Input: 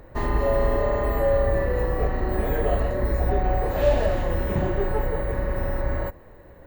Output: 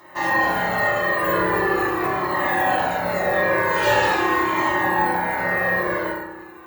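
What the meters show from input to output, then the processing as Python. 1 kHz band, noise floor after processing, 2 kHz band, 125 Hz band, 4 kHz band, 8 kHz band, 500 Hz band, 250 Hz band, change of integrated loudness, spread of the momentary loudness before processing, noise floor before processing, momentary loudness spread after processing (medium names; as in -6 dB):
+10.5 dB, -40 dBFS, +15.5 dB, -7.5 dB, +12.5 dB, no reading, +0.5 dB, +4.0 dB, +4.5 dB, 6 LU, -47 dBFS, 4 LU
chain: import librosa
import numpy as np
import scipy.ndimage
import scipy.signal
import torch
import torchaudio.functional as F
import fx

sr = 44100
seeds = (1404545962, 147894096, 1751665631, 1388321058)

y = fx.spec_clip(x, sr, under_db=18)
y = fx.highpass(y, sr, hz=890.0, slope=6)
y = fx.doubler(y, sr, ms=28.0, db=-11.5)
y = fx.rev_fdn(y, sr, rt60_s=1.1, lf_ratio=1.35, hf_ratio=0.55, size_ms=17.0, drr_db=-7.5)
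y = fx.comb_cascade(y, sr, direction='falling', hz=0.43)
y = y * librosa.db_to_amplitude(2.5)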